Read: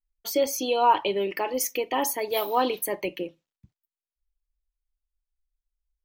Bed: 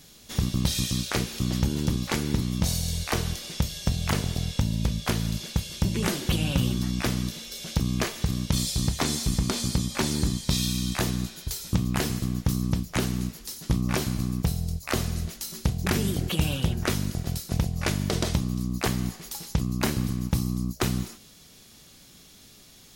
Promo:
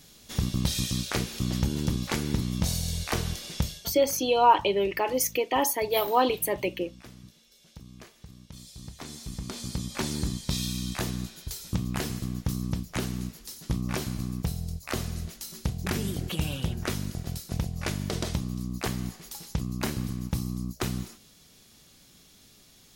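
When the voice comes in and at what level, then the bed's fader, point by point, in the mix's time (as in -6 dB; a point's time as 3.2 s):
3.60 s, +1.0 dB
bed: 3.69 s -2 dB
3.97 s -21.5 dB
8.5 s -21.5 dB
9.99 s -4.5 dB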